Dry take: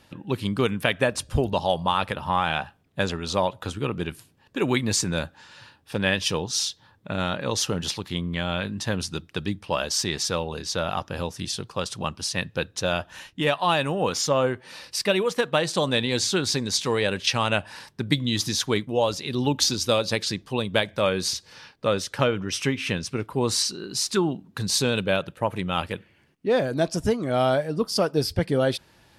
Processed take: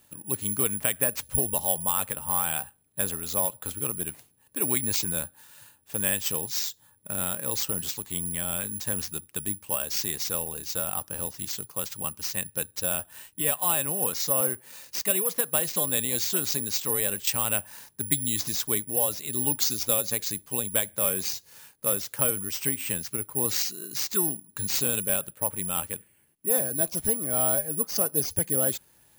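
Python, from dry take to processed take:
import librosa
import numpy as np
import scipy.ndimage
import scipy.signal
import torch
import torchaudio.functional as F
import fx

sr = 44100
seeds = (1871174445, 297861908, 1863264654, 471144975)

y = (np.kron(x[::4], np.eye(4)[0]) * 4)[:len(x)]
y = F.gain(torch.from_numpy(y), -9.0).numpy()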